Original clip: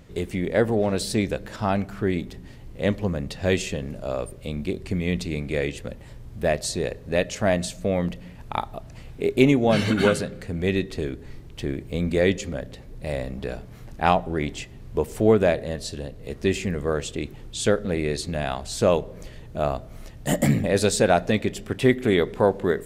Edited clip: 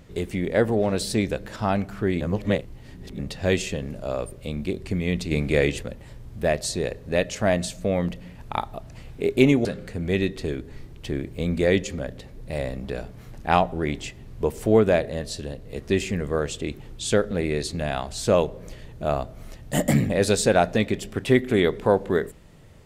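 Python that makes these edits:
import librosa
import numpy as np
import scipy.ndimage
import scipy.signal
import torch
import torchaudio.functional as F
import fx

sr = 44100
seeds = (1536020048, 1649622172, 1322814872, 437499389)

y = fx.edit(x, sr, fx.reverse_span(start_s=2.21, length_s=0.98),
    fx.clip_gain(start_s=5.31, length_s=0.52, db=5.0),
    fx.cut(start_s=9.65, length_s=0.54), tone=tone)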